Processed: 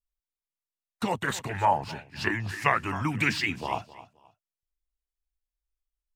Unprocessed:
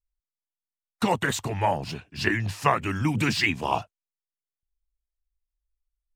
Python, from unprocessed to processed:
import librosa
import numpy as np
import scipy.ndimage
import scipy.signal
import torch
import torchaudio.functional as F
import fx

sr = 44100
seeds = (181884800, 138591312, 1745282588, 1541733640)

y = fx.echo_feedback(x, sr, ms=263, feedback_pct=26, wet_db=-17.5)
y = fx.bell_lfo(y, sr, hz=1.7, low_hz=880.0, high_hz=2100.0, db=12, at=(1.26, 3.38), fade=0.02)
y = F.gain(torch.from_numpy(y), -5.0).numpy()